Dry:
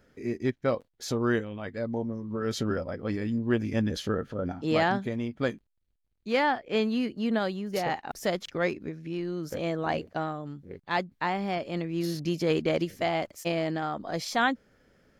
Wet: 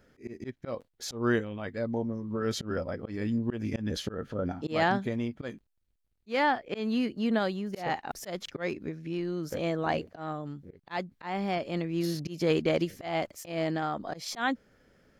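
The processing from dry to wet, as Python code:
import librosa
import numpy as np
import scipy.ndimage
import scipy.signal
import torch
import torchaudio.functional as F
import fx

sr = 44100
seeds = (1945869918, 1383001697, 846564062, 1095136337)

y = fx.auto_swell(x, sr, attack_ms=161.0)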